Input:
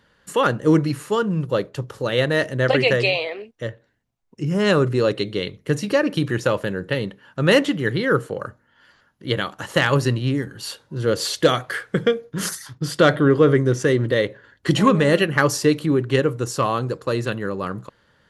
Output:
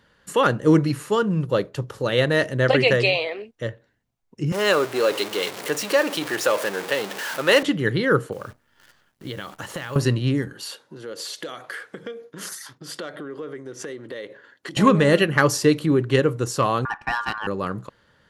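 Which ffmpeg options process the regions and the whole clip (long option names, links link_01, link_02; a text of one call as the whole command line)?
ffmpeg -i in.wav -filter_complex "[0:a]asettb=1/sr,asplit=3[link_01][link_02][link_03];[link_01]atrim=end=4.524[link_04];[link_02]atrim=start=4.52:end=7.63,asetpts=PTS-STARTPTS,afade=type=in:duration=0.004:curve=qsin,afade=type=out:start_time=3.106:duration=0.004:curve=qsin,aeval=exprs='val(0)+0.5*0.0668*sgn(val(0))':channel_layout=same,highpass=460[link_05];[link_03]atrim=start=7.626[link_06];[link_04][link_05]acrossfade=duration=0.004:curve1=hsin:curve2=qsin[link_07];[link_07][link_06]acrossfade=duration=0.004:curve1=qsin:curve2=hsin,asettb=1/sr,asplit=3[link_08][link_09][link_10];[link_08]atrim=end=8.324[link_11];[link_09]atrim=start=8.32:end=9.96,asetpts=PTS-STARTPTS,afade=type=in:duration=0.004:curve=qsin,afade=type=out:start_time=1.636:duration=0.004:curve=qsin,acompressor=threshold=-28dB:ratio=6:attack=3.2:release=140:knee=1:detection=peak,acrusher=bits=9:dc=4:mix=0:aa=0.000001[link_12];[link_10]atrim=start=9.956[link_13];[link_11][link_12]acrossfade=duration=0.004:curve1=hsin:curve2=qsin[link_14];[link_14][link_13]acrossfade=duration=0.004:curve1=qsin:curve2=hsin,asettb=1/sr,asplit=3[link_15][link_16][link_17];[link_15]atrim=end=10.534[link_18];[link_16]atrim=start=10.53:end=14.77,asetpts=PTS-STARTPTS,afade=type=in:duration=0.004:curve=qsin,afade=type=out:start_time=4.236:duration=0.004:curve=qsin,acompressor=threshold=-29dB:ratio=8:attack=3.2:release=140:knee=1:detection=peak,highpass=270[link_19];[link_17]atrim=start=14.766[link_20];[link_18][link_19]acrossfade=duration=0.004:curve1=hsin:curve2=qsin[link_21];[link_21][link_20]acrossfade=duration=0.004:curve1=qsin:curve2=hsin,asettb=1/sr,asplit=3[link_22][link_23][link_24];[link_22]atrim=end=16.854[link_25];[link_23]atrim=start=16.85:end=17.47,asetpts=PTS-STARTPTS,afade=type=in:duration=0.004:curve=qsin,afade=type=out:start_time=0.616:duration=0.004:curve=qsin,adynamicsmooth=sensitivity=5:basefreq=3000,aeval=exprs='val(0)*sin(2*PI*1300*n/s)':channel_layout=same[link_26];[link_24]atrim=start=17.466[link_27];[link_25][link_26]acrossfade=duration=0.004:curve1=hsin:curve2=qsin[link_28];[link_28][link_27]acrossfade=duration=0.004:curve1=qsin:curve2=hsin" out.wav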